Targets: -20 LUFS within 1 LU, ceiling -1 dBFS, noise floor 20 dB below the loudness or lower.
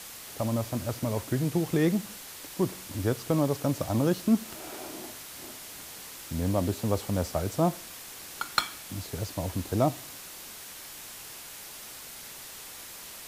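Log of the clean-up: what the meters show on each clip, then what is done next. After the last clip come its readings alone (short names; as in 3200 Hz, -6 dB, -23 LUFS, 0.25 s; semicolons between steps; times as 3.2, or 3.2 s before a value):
noise floor -44 dBFS; noise floor target -52 dBFS; loudness -31.5 LUFS; peak -6.5 dBFS; loudness target -20.0 LUFS
-> denoiser 8 dB, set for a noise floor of -44 dBFS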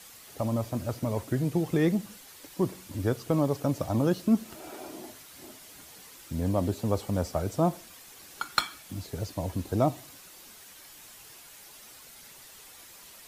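noise floor -50 dBFS; loudness -29.5 LUFS; peak -6.5 dBFS; loudness target -20.0 LUFS
-> gain +9.5 dB; limiter -1 dBFS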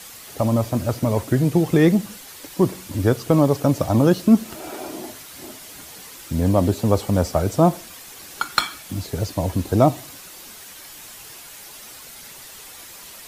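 loudness -20.0 LUFS; peak -1.0 dBFS; noise floor -41 dBFS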